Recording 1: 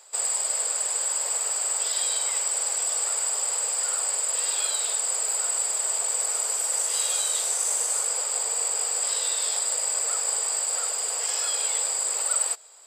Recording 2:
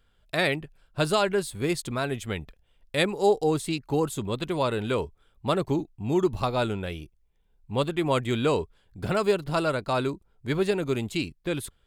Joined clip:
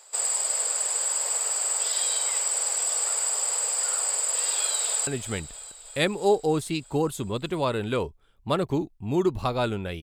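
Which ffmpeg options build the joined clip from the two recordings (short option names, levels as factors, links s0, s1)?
-filter_complex "[0:a]apad=whole_dur=10.02,atrim=end=10.02,atrim=end=5.072[s0];[1:a]atrim=start=2.048:end=7[s1];[s0][s1]acrossfade=d=0.004:c1=hsin:c2=hsin,asplit=2[s2][s3];[s3]afade=t=in:st=4.57:d=0.01,afade=t=out:st=5.07:d=0.01,aecho=0:1:320|640|960|1280|1600|1920|2240|2560|2880:0.211349|0.147944|0.103561|0.0724927|0.0507449|0.0355214|0.024865|0.0174055|0.0121838[s4];[s2][s4]amix=inputs=2:normalize=0"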